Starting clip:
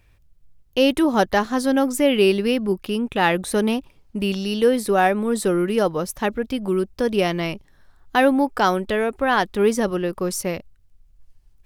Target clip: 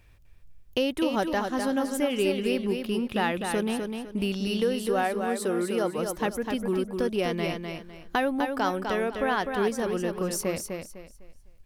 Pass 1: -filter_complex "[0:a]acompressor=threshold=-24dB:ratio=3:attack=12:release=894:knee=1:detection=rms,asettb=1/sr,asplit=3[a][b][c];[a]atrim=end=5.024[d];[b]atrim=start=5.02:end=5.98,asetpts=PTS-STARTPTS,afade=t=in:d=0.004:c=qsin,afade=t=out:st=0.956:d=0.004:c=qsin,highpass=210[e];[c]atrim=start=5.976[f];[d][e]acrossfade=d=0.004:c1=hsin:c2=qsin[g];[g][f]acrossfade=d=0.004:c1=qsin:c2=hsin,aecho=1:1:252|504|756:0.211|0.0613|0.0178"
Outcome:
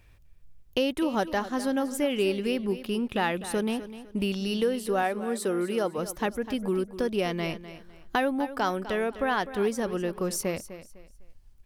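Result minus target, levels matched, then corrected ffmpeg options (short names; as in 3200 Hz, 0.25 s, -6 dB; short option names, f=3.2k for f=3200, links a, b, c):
echo-to-direct -8 dB
-filter_complex "[0:a]acompressor=threshold=-24dB:ratio=3:attack=12:release=894:knee=1:detection=rms,asettb=1/sr,asplit=3[a][b][c];[a]atrim=end=5.024[d];[b]atrim=start=5.02:end=5.98,asetpts=PTS-STARTPTS,afade=t=in:d=0.004:c=qsin,afade=t=out:st=0.956:d=0.004:c=qsin,highpass=210[e];[c]atrim=start=5.976[f];[d][e]acrossfade=d=0.004:c1=hsin:c2=qsin[g];[g][f]acrossfade=d=0.004:c1=qsin:c2=hsin,aecho=1:1:252|504|756|1008:0.531|0.154|0.0446|0.0129"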